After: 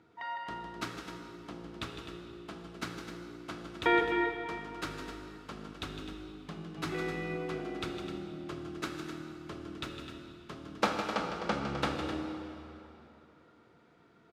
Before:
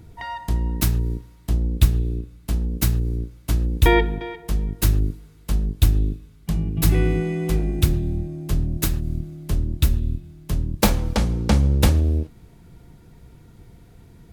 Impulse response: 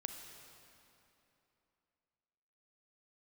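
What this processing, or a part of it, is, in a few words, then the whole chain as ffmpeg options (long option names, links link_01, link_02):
station announcement: -filter_complex "[0:a]highpass=320,lowpass=3900,equalizer=frequency=1300:width_type=o:width=0.4:gain=9.5,aecho=1:1:157.4|256.6:0.355|0.316[link_01];[1:a]atrim=start_sample=2205[link_02];[link_01][link_02]afir=irnorm=-1:irlink=0,volume=-6dB"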